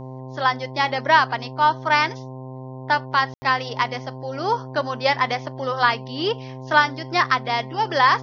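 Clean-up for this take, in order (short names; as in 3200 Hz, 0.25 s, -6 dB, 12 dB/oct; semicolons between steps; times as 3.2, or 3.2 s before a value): de-hum 130.1 Hz, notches 8; room tone fill 3.34–3.42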